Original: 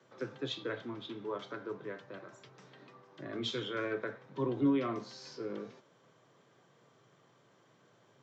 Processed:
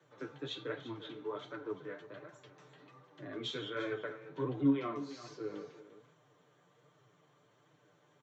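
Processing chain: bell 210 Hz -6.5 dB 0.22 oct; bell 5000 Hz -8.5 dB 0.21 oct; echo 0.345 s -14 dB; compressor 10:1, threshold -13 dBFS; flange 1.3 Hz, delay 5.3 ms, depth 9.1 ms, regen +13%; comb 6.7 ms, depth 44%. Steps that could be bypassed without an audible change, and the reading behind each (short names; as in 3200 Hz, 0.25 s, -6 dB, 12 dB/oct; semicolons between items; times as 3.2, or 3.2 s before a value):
compressor, threshold -13 dBFS: input peak -20.5 dBFS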